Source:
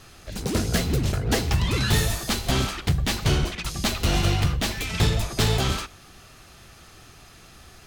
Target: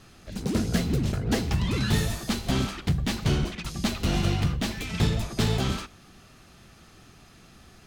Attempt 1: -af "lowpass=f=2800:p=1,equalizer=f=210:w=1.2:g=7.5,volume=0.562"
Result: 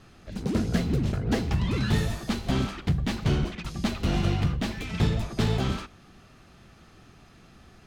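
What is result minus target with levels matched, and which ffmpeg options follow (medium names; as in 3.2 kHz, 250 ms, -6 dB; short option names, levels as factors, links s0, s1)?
8 kHz band -6.0 dB
-af "lowpass=f=9200:p=1,equalizer=f=210:w=1.2:g=7.5,volume=0.562"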